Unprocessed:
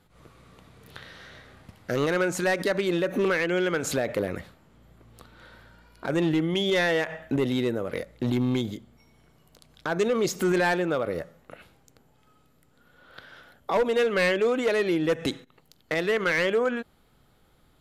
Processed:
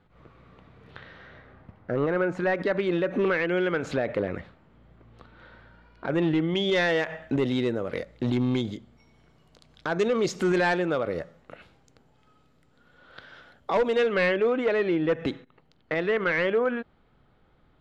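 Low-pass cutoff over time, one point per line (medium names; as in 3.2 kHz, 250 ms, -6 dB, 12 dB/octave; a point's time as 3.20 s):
0.99 s 2.6 kHz
1.97 s 1.3 kHz
2.91 s 2.9 kHz
6.13 s 2.9 kHz
6.83 s 5.7 kHz
13.90 s 5.7 kHz
14.37 s 2.6 kHz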